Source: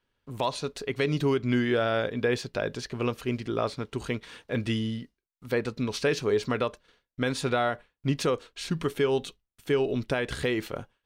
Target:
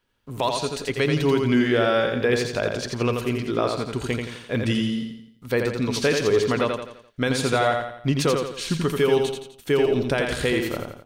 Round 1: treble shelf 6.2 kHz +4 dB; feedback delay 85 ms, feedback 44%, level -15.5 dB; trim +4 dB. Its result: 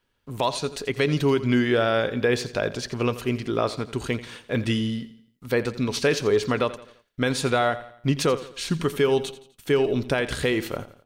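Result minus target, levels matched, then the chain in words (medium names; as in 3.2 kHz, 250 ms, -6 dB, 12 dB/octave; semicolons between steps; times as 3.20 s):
echo-to-direct -11 dB
treble shelf 6.2 kHz +4 dB; feedback delay 85 ms, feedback 44%, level -4.5 dB; trim +4 dB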